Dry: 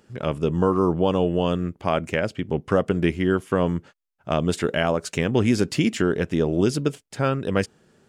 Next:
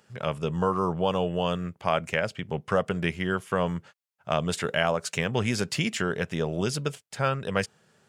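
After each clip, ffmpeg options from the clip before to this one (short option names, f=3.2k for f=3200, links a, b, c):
-af "highpass=120,equalizer=f=300:w=1.5:g=-14"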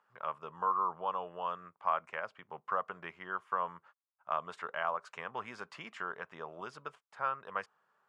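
-af "bandpass=f=1.1k:t=q:w=3.7:csg=0"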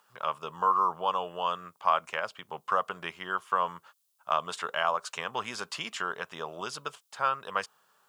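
-af "aexciter=amount=2.4:drive=8.6:freq=2.9k,volume=6.5dB"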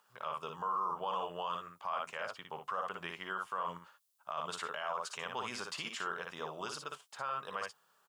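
-af "aecho=1:1:58|70:0.501|0.158,alimiter=limit=-22dB:level=0:latency=1:release=32,volume=-5dB"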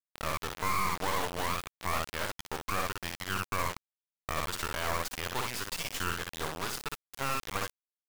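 -af "acrusher=bits=4:dc=4:mix=0:aa=0.000001,volume=8.5dB"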